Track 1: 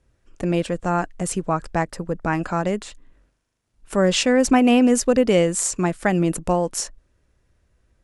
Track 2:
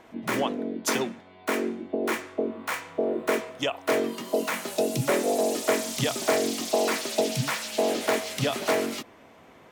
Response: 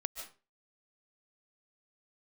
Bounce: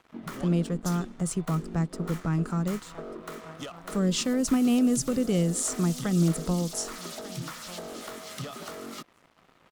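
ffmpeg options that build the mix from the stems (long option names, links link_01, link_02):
-filter_complex "[0:a]volume=-5.5dB,asplit=2[link_01][link_02];[link_02]volume=-21dB[link_03];[1:a]asoftclip=type=tanh:threshold=-23.5dB,acompressor=threshold=-33dB:ratio=6,volume=-1.5dB[link_04];[link_03]aecho=0:1:1191|2382|3573:1|0.18|0.0324[link_05];[link_01][link_04][link_05]amix=inputs=3:normalize=0,equalizer=frequency=160:width_type=o:width=0.33:gain=8,equalizer=frequency=1250:width_type=o:width=0.33:gain=11,equalizer=frequency=2500:width_type=o:width=0.33:gain=-4,acrossover=split=380|3000[link_06][link_07][link_08];[link_07]acompressor=threshold=-38dB:ratio=6[link_09];[link_06][link_09][link_08]amix=inputs=3:normalize=0,aeval=exprs='sgn(val(0))*max(abs(val(0))-0.00299,0)':channel_layout=same"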